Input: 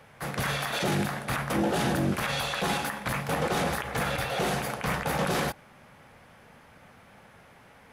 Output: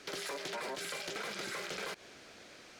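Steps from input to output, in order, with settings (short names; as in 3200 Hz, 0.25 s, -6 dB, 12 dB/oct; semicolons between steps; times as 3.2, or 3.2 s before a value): air absorption 200 m; compressor 6:1, threshold -38 dBFS, peak gain reduction 14.5 dB; wide varispeed 2.84×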